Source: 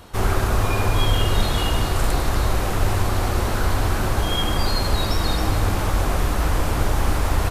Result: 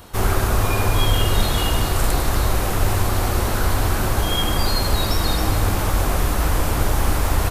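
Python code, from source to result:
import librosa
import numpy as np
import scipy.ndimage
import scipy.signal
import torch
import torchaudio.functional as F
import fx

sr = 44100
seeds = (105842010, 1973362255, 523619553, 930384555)

y = fx.high_shelf(x, sr, hz=10000.0, db=9.5)
y = y * 10.0 ** (1.0 / 20.0)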